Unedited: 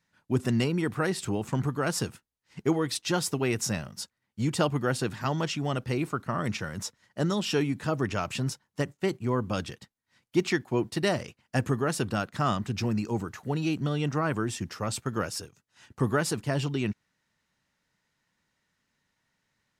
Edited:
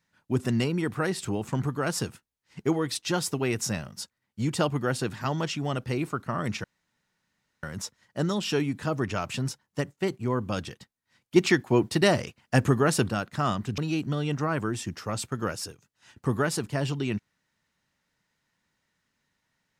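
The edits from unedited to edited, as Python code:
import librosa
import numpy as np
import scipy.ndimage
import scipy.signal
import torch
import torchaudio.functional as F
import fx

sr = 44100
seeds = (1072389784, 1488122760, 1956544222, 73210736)

y = fx.edit(x, sr, fx.insert_room_tone(at_s=6.64, length_s=0.99),
    fx.clip_gain(start_s=10.37, length_s=1.74, db=5.0),
    fx.cut(start_s=12.79, length_s=0.73), tone=tone)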